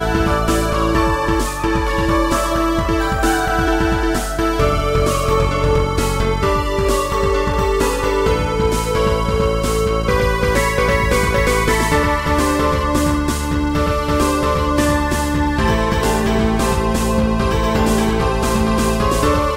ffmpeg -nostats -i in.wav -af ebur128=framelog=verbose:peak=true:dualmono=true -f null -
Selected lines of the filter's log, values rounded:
Integrated loudness:
  I:         -13.9 LUFS
  Threshold: -23.9 LUFS
Loudness range:
  LRA:         1.2 LU
  Threshold: -33.9 LUFS
  LRA low:   -14.2 LUFS
  LRA high:  -13.0 LUFS
True peak:
  Peak:       -5.6 dBFS